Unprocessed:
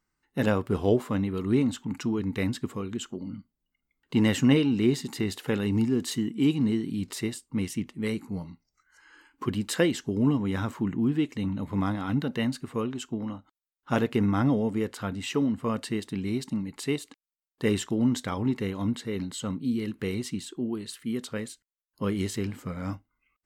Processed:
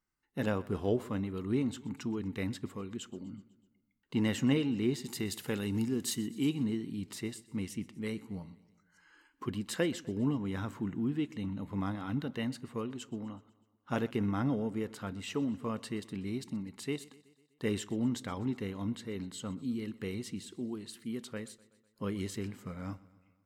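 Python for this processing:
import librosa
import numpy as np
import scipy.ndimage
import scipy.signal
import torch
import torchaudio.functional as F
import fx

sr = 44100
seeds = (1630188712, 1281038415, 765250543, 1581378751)

y = fx.high_shelf(x, sr, hz=5100.0, db=11.0, at=(5.04, 6.5))
y = fx.echo_feedback(y, sr, ms=125, feedback_pct=59, wet_db=-21.0)
y = F.gain(torch.from_numpy(y), -7.5).numpy()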